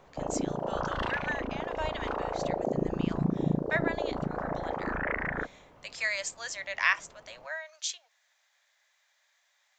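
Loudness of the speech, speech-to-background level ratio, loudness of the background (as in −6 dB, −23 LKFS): −35.0 LKFS, −2.5 dB, −32.5 LKFS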